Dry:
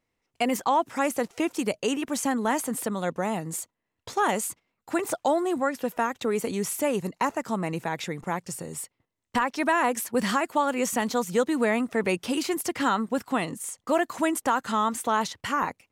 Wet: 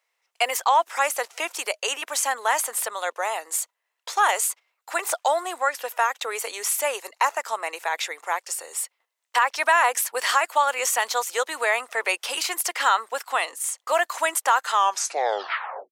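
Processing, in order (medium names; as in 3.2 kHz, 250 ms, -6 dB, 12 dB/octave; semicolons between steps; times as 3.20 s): tape stop on the ending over 1.19 s; Bessel high-pass 870 Hz, order 6; trim +7.5 dB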